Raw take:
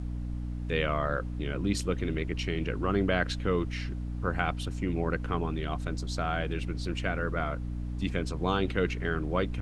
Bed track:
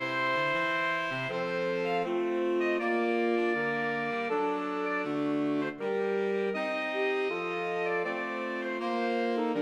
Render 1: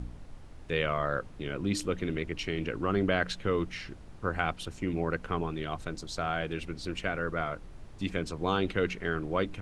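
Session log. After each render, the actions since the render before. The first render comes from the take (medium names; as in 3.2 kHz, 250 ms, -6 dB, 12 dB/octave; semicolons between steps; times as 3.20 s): de-hum 60 Hz, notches 5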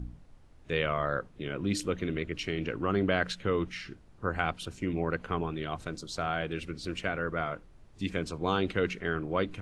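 noise print and reduce 9 dB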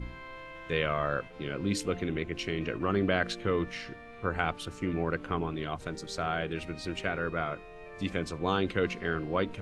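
add bed track -17 dB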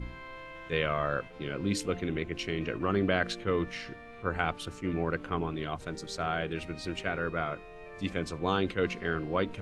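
attacks held to a fixed rise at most 350 dB/s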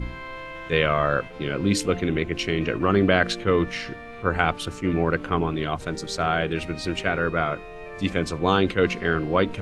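trim +8.5 dB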